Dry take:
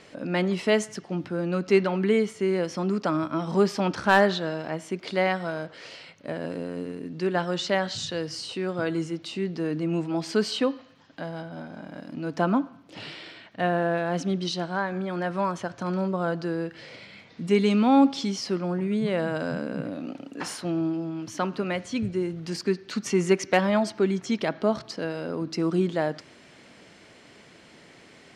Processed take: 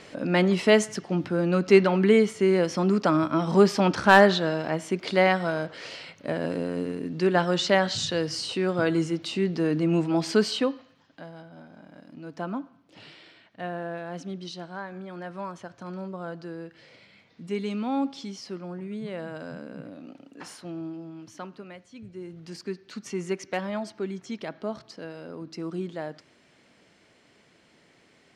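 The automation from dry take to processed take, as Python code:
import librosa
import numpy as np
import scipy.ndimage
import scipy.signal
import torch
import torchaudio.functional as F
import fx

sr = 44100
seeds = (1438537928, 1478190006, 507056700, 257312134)

y = fx.gain(x, sr, db=fx.line((10.28, 3.5), (11.34, -9.0), (21.23, -9.0), (21.92, -18.0), (22.37, -8.5)))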